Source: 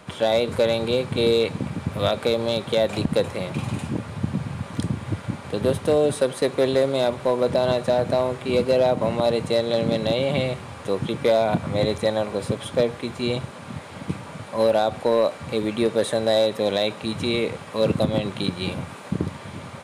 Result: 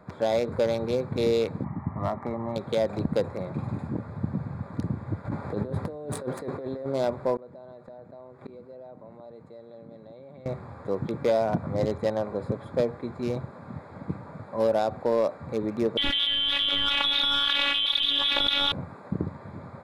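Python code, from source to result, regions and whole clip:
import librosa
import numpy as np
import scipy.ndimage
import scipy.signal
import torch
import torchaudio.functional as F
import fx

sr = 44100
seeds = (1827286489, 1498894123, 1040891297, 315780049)

y = fx.chain(x, sr, fx.lowpass(hz=2100.0, slope=24),
    fx.low_shelf(hz=150.0, db=-7.0),
    fx.comb(ms=1.0, depth=0.79), at=(1.64, 2.56))
y = fx.chain(y, sr, fx.over_compress(threshold_db=-28.0, ratio=-1.0),
    fx.doubler(ms=19.0, db=-13), at=(5.25, 6.86))
y = fx.chain(y, sr, fx.low_shelf(hz=77.0, db=-9.5),
    fx.gate_flip(shuts_db=-20.0, range_db=-29),
    fx.env_flatten(amount_pct=50), at=(7.36, 10.46))
y = fx.chain(y, sr, fx.freq_invert(carrier_hz=3700),
    fx.robotise(hz=283.0),
    fx.env_flatten(amount_pct=100), at=(15.97, 18.72))
y = fx.wiener(y, sr, points=15)
y = fx.peak_eq(y, sr, hz=2900.0, db=-4.5, octaves=0.2)
y = F.gain(torch.from_numpy(y), -4.0).numpy()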